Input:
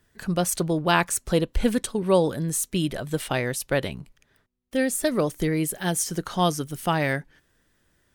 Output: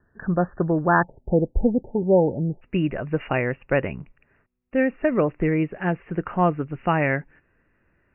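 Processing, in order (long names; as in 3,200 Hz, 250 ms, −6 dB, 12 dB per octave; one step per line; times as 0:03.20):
Chebyshev low-pass filter 1,800 Hz, order 10, from 0:01.02 900 Hz, from 0:02.61 2,800 Hz
level +3 dB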